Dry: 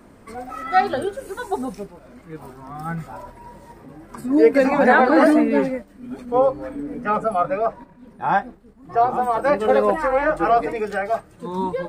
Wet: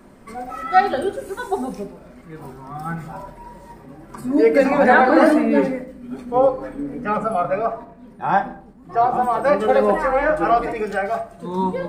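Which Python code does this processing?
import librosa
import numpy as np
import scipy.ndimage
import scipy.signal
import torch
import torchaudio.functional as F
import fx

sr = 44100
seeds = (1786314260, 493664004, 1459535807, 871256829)

y = fx.room_shoebox(x, sr, seeds[0], volume_m3=810.0, walls='furnished', distance_m=1.1)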